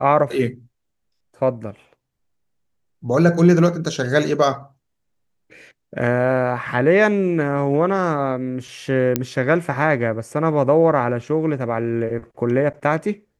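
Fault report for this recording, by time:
9.16 pop -4 dBFS

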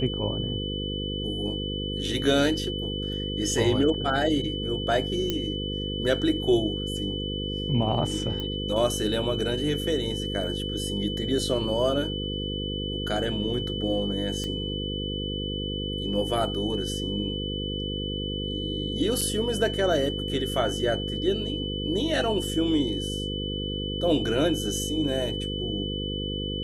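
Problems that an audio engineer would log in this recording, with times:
buzz 50 Hz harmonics 10 -32 dBFS
tone 3000 Hz -33 dBFS
5.3 pop -12 dBFS
8.4 pop -19 dBFS
14.44 pop -20 dBFS
19.21 gap 4.7 ms

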